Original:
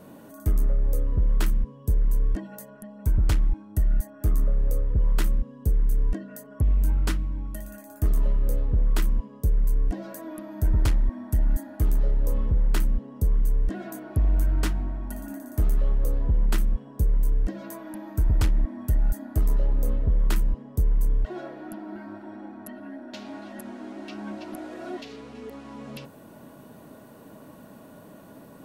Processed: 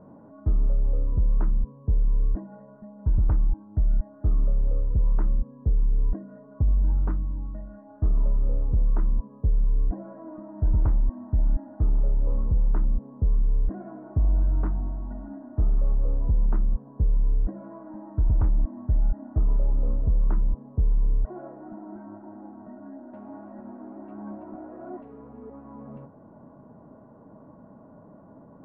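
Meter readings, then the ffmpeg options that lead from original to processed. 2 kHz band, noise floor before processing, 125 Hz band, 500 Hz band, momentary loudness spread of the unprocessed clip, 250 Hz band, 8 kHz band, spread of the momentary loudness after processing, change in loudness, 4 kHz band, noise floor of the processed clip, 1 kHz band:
−14.0 dB, −48 dBFS, 0.0 dB, −3.0 dB, 15 LU, −2.0 dB, below −35 dB, 17 LU, 0.0 dB, below −35 dB, −50 dBFS, −3.0 dB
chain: -af "lowpass=frequency=1100:width=0.5412,lowpass=frequency=1100:width=1.3066,equalizer=frequency=400:width=1:gain=-4"

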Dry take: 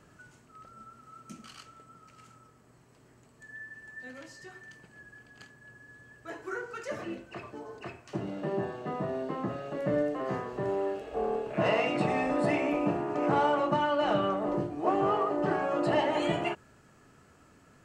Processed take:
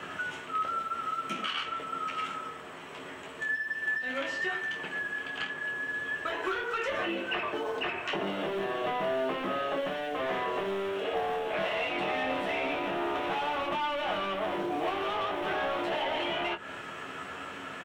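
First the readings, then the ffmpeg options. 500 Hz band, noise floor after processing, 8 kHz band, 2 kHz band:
−2.0 dB, −43 dBFS, can't be measured, +7.5 dB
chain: -filter_complex "[0:a]bandreject=frequency=60:width_type=h:width=6,bandreject=frequency=120:width_type=h:width=6,bandreject=frequency=180:width_type=h:width=6,bandreject=frequency=240:width_type=h:width=6,bandreject=frequency=300:width_type=h:width=6,asplit=2[link_01][link_02];[link_02]acrusher=bits=4:mode=log:mix=0:aa=0.000001,volume=-5.5dB[link_03];[link_01][link_03]amix=inputs=2:normalize=0,asplit=2[link_04][link_05];[link_05]highpass=frequency=720:poles=1,volume=26dB,asoftclip=type=tanh:threshold=-10dB[link_06];[link_04][link_06]amix=inputs=2:normalize=0,lowpass=frequency=5400:poles=1,volume=-6dB,highshelf=frequency=4000:width_type=q:width=3:gain=-6.5,acompressor=threshold=-23dB:ratio=6,equalizer=frequency=5500:width=7.4:gain=6,acrossover=split=180|4000[link_07][link_08][link_09];[link_07]acompressor=threshold=-52dB:ratio=4[link_10];[link_08]acompressor=threshold=-28dB:ratio=4[link_11];[link_09]acompressor=threshold=-51dB:ratio=4[link_12];[link_10][link_11][link_12]amix=inputs=3:normalize=0,asplit=2[link_13][link_14];[link_14]aecho=0:1:11|26:0.531|0.473[link_15];[link_13][link_15]amix=inputs=2:normalize=0,volume=-3dB"

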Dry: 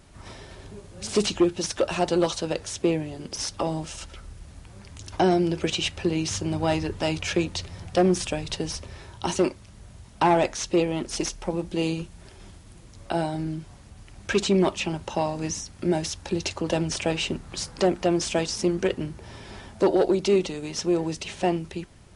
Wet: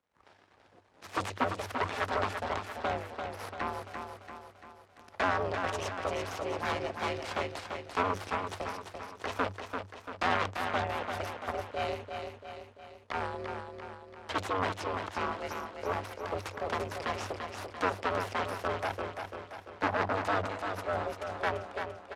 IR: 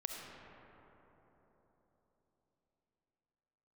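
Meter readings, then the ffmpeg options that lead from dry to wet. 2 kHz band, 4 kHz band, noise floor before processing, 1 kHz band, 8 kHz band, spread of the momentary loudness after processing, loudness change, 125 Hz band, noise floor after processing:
−0.5 dB, −11.0 dB, −48 dBFS, −1.5 dB, −17.5 dB, 13 LU, −8.5 dB, −11.0 dB, −60 dBFS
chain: -filter_complex "[0:a]aeval=exprs='0.376*(cos(1*acos(clip(val(0)/0.376,-1,1)))-cos(1*PI/2))+0.133*(cos(3*acos(clip(val(0)/0.376,-1,1)))-cos(3*PI/2))+0.0668*(cos(8*acos(clip(val(0)/0.376,-1,1)))-cos(8*PI/2))':channel_layout=same,afreqshift=-99,aeval=exprs='clip(val(0),-1,0.0398)':channel_layout=same,bandpass=frequency=960:width_type=q:width=0.57:csg=0,asplit=2[link_01][link_02];[link_02]aecho=0:1:341|682|1023|1364|1705|2046|2387:0.501|0.266|0.141|0.0746|0.0395|0.021|0.0111[link_03];[link_01][link_03]amix=inputs=2:normalize=0"

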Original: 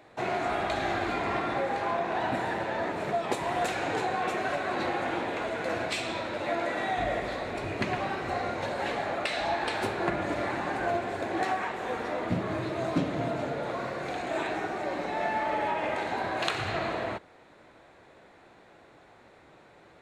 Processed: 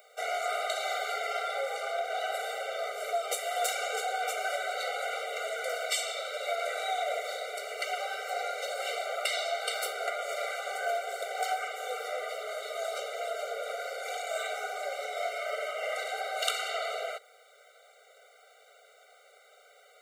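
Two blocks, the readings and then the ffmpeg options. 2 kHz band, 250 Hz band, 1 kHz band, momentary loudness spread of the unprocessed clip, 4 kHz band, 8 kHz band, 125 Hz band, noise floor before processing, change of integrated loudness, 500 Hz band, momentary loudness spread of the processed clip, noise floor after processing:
−1.5 dB, below −35 dB, −3.5 dB, 3 LU, +3.0 dB, +8.5 dB, below −40 dB, −56 dBFS, −2.5 dB, −2.5 dB, 5 LU, −59 dBFS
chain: -af "aemphasis=mode=production:type=riaa,aeval=exprs='val(0)+0.00224*(sin(2*PI*60*n/s)+sin(2*PI*2*60*n/s)/2+sin(2*PI*3*60*n/s)/3+sin(2*PI*4*60*n/s)/4+sin(2*PI*5*60*n/s)/5)':channel_layout=same,afftfilt=real='re*eq(mod(floor(b*sr/1024/390),2),1)':imag='im*eq(mod(floor(b*sr/1024/390),2),1)':win_size=1024:overlap=0.75"

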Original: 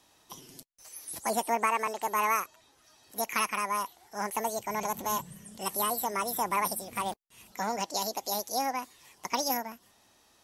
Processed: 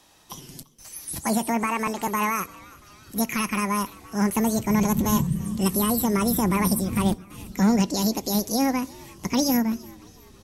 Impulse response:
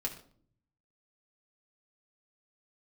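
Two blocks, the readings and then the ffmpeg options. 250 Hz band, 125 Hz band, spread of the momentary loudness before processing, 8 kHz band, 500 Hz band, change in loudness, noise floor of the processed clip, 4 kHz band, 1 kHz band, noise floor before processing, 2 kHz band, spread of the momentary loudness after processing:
+19.5 dB, +22.0 dB, 18 LU, +5.5 dB, +6.0 dB, +7.0 dB, −51 dBFS, +5.0 dB, +1.5 dB, −64 dBFS, +3.5 dB, 14 LU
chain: -filter_complex "[0:a]alimiter=limit=-20.5dB:level=0:latency=1:release=16,asplit=4[link_01][link_02][link_03][link_04];[link_02]adelay=341,afreqshift=87,volume=-22dB[link_05];[link_03]adelay=682,afreqshift=174,volume=-28.6dB[link_06];[link_04]adelay=1023,afreqshift=261,volume=-35.1dB[link_07];[link_01][link_05][link_06][link_07]amix=inputs=4:normalize=0,asplit=2[link_08][link_09];[1:a]atrim=start_sample=2205[link_10];[link_09][link_10]afir=irnorm=-1:irlink=0,volume=-14.5dB[link_11];[link_08][link_11]amix=inputs=2:normalize=0,asubboost=boost=12:cutoff=220,volume=5.5dB"

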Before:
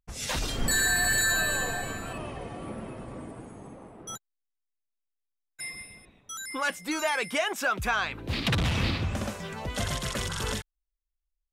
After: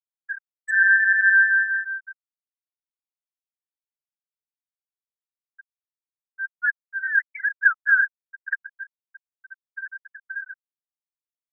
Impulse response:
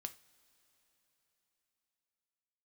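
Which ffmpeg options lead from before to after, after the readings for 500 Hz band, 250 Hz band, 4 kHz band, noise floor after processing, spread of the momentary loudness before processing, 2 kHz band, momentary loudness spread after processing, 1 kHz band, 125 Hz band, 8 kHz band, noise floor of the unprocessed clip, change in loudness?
below −40 dB, below −40 dB, below −40 dB, below −85 dBFS, 19 LU, +11.0 dB, 20 LU, −6.5 dB, below −40 dB, below −25 dB, −83 dBFS, +9.0 dB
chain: -af "highpass=frequency=1600:width_type=q:width=15,afftfilt=real='re*gte(hypot(re,im),0.501)':imag='im*gte(hypot(re,im),0.501)':win_size=1024:overlap=0.75,volume=-7dB"

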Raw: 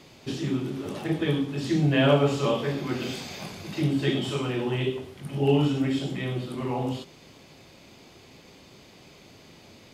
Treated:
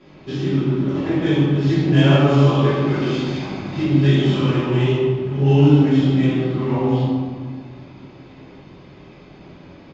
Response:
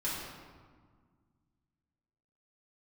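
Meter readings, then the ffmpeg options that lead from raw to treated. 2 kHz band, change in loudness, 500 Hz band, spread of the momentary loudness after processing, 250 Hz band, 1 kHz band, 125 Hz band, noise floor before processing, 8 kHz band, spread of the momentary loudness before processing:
+5.5 dB, +9.0 dB, +6.5 dB, 12 LU, +9.5 dB, +6.5 dB, +12.0 dB, −52 dBFS, can't be measured, 14 LU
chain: -filter_complex "[0:a]asplit=2[link_01][link_02];[link_02]alimiter=limit=-19dB:level=0:latency=1,volume=2dB[link_03];[link_01][link_03]amix=inputs=2:normalize=0,flanger=delay=20:depth=3.4:speed=1.4,adynamicsmooth=sensitivity=5.5:basefreq=2500[link_04];[1:a]atrim=start_sample=2205[link_05];[link_04][link_05]afir=irnorm=-1:irlink=0,aresample=16000,aresample=44100,volume=-1dB"

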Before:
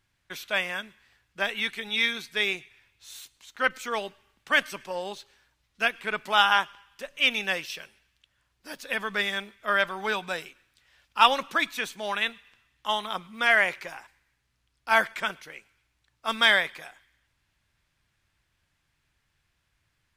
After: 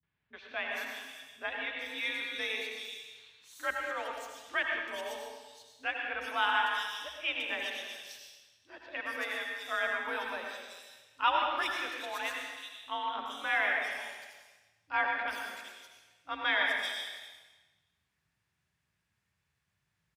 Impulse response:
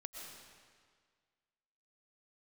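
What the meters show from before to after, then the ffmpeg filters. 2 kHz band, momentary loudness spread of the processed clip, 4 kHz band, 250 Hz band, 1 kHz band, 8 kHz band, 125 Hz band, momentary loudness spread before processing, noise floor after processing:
−6.5 dB, 19 LU, −8.5 dB, −9.5 dB, −6.0 dB, −6.5 dB, below −15 dB, 21 LU, −81 dBFS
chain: -filter_complex "[0:a]afreqshift=52,acrossover=split=260|3600[link_01][link_02][link_03];[link_02]adelay=30[link_04];[link_03]adelay=410[link_05];[link_01][link_04][link_05]amix=inputs=3:normalize=0[link_06];[1:a]atrim=start_sample=2205,asetrate=61740,aresample=44100[link_07];[link_06][link_07]afir=irnorm=-1:irlink=0"

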